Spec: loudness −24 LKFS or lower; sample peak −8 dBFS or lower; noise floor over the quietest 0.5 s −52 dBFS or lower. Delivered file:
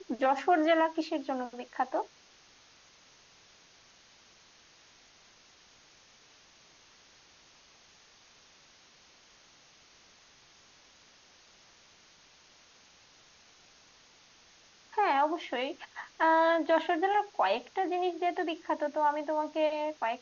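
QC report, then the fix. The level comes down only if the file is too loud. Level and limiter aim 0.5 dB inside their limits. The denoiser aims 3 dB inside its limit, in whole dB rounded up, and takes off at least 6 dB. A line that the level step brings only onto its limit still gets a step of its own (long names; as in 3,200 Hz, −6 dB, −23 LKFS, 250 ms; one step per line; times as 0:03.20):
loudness −30.0 LKFS: in spec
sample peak −15.0 dBFS: in spec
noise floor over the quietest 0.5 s −60 dBFS: in spec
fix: no processing needed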